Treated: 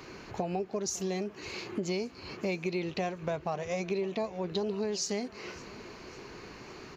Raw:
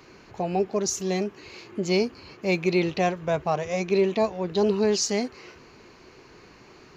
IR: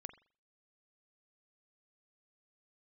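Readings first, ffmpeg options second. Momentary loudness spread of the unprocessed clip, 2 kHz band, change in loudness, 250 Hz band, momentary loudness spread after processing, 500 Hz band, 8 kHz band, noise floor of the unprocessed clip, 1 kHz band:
10 LU, -7.5 dB, -9.0 dB, -8.0 dB, 14 LU, -9.0 dB, -7.0 dB, -52 dBFS, -8.5 dB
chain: -af "acompressor=threshold=-34dB:ratio=6,aecho=1:1:555|1110|1665|2220:0.0794|0.0429|0.0232|0.0125,volume=3.5dB"

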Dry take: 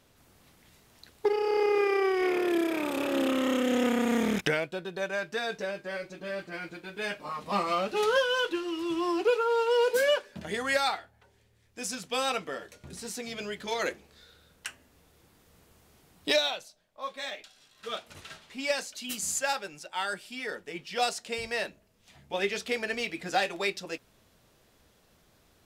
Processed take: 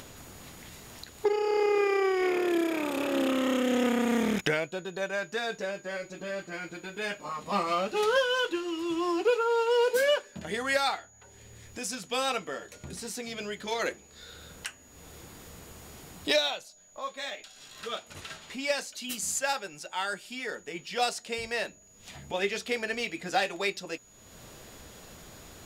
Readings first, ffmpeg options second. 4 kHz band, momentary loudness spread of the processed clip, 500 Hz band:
0.0 dB, 21 LU, 0.0 dB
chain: -af "acompressor=mode=upward:threshold=-35dB:ratio=2.5,aeval=exprs='val(0)+0.00158*sin(2*PI*6800*n/s)':c=same"

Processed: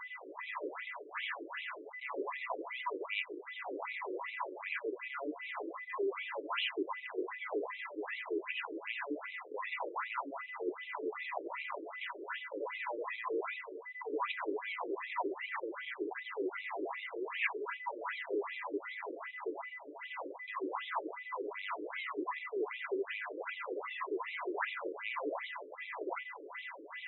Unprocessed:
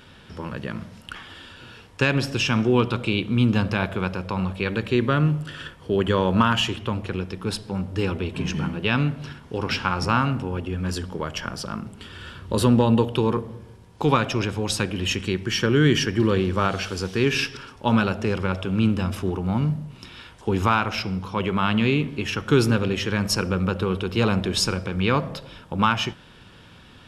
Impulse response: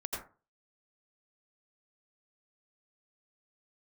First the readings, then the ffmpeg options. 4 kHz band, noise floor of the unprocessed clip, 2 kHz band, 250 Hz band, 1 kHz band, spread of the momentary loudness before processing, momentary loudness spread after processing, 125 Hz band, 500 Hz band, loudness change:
-18.0 dB, -48 dBFS, -10.0 dB, -22.0 dB, -12.5 dB, 15 LU, 6 LU, under -40 dB, -13.5 dB, -16.5 dB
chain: -filter_complex "[0:a]areverse,acompressor=threshold=-33dB:ratio=16,areverse[a];[1:a]atrim=start_sample=2205,atrim=end_sample=4410[b];[a][b]afir=irnorm=-1:irlink=0,acrossover=split=330|2300[c][d][e];[d]asoftclip=type=hard:threshold=-39.5dB[f];[c][f][e]amix=inputs=3:normalize=0,acrusher=samples=17:mix=1:aa=0.000001:lfo=1:lforange=27.2:lforate=0.55,aeval=exprs='val(0)+0.00316*sin(2*PI*2000*n/s)':c=same,highpass=140,equalizer=f=200:t=q:w=4:g=8,equalizer=f=300:t=q:w=4:g=4,equalizer=f=990:t=q:w=4:g=9,equalizer=f=2.3k:t=q:w=4:g=7,lowpass=f=4k:w=0.5412,lowpass=f=4k:w=1.3066,afftfilt=real='re*between(b*sr/1024,390*pow(2900/390,0.5+0.5*sin(2*PI*2.6*pts/sr))/1.41,390*pow(2900/390,0.5+0.5*sin(2*PI*2.6*pts/sr))*1.41)':imag='im*between(b*sr/1024,390*pow(2900/390,0.5+0.5*sin(2*PI*2.6*pts/sr))/1.41,390*pow(2900/390,0.5+0.5*sin(2*PI*2.6*pts/sr))*1.41)':win_size=1024:overlap=0.75,volume=4.5dB"

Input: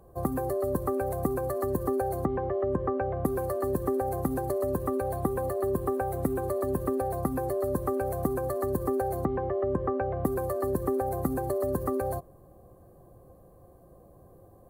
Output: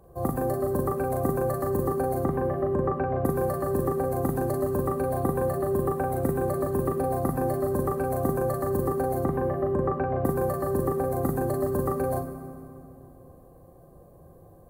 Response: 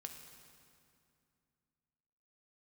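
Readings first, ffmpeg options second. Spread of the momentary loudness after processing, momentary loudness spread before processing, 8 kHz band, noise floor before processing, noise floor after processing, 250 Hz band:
1 LU, 2 LU, +2.5 dB, -55 dBFS, -52 dBFS, +2.5 dB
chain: -filter_complex "[0:a]asplit=2[a][b];[1:a]atrim=start_sample=2205,adelay=40[c];[b][c]afir=irnorm=-1:irlink=0,volume=3.5dB[d];[a][d]amix=inputs=2:normalize=0"

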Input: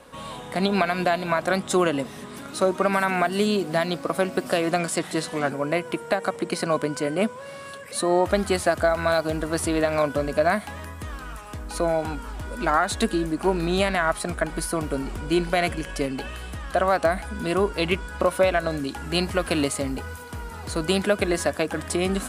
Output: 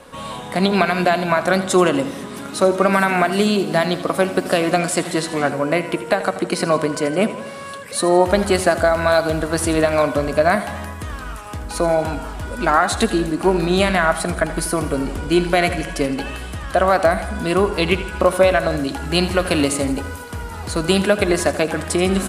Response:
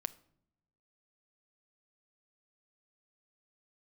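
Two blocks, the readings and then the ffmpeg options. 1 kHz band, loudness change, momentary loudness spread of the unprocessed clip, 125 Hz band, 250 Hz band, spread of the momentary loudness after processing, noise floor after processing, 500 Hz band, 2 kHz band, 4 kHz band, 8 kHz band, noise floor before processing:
+6.0 dB, +6.0 dB, 13 LU, +6.5 dB, +6.0 dB, 13 LU, -32 dBFS, +6.0 dB, +6.0 dB, +5.5 dB, +6.0 dB, -39 dBFS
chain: -filter_complex "[0:a]aecho=1:1:82|164|246|328|410|492:0.2|0.11|0.0604|0.0332|0.0183|0.01,asplit=2[a][b];[1:a]atrim=start_sample=2205,asetrate=26019,aresample=44100[c];[b][c]afir=irnorm=-1:irlink=0,volume=8dB[d];[a][d]amix=inputs=2:normalize=0,volume=-6.5dB"

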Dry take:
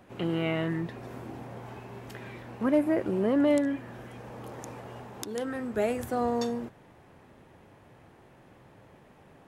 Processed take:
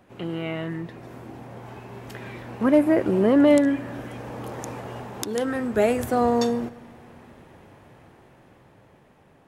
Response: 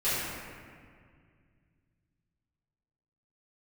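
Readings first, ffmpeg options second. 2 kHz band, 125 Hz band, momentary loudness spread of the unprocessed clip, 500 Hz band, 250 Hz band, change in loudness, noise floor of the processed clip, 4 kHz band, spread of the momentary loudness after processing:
+5.5 dB, +3.5 dB, 19 LU, +7.0 dB, +6.5 dB, +7.0 dB, -56 dBFS, +5.0 dB, 23 LU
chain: -filter_complex "[0:a]dynaudnorm=f=460:g=9:m=8.5dB,asplit=2[a][b];[1:a]atrim=start_sample=2205,adelay=101[c];[b][c]afir=irnorm=-1:irlink=0,volume=-34dB[d];[a][d]amix=inputs=2:normalize=0,volume=-1dB"

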